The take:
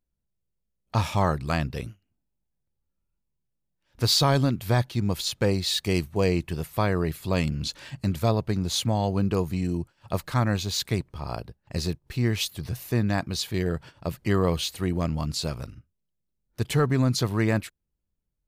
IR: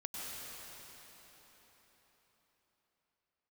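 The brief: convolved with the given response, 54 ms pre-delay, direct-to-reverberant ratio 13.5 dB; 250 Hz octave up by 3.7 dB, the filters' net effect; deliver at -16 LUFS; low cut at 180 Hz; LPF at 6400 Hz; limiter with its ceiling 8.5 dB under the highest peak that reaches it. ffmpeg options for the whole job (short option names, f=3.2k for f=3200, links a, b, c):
-filter_complex "[0:a]highpass=180,lowpass=6.4k,equalizer=f=250:t=o:g=7,alimiter=limit=-15.5dB:level=0:latency=1,asplit=2[a][b];[1:a]atrim=start_sample=2205,adelay=54[c];[b][c]afir=irnorm=-1:irlink=0,volume=-14.5dB[d];[a][d]amix=inputs=2:normalize=0,volume=12.5dB"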